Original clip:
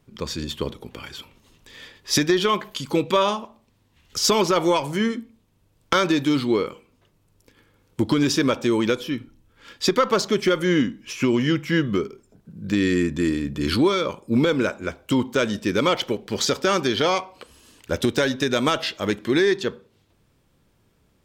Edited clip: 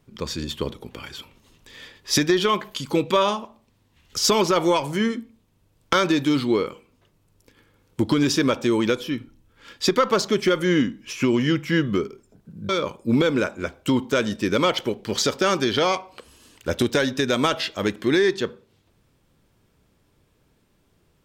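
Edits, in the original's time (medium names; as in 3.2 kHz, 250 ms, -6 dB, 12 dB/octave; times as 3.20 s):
12.69–13.92 s: delete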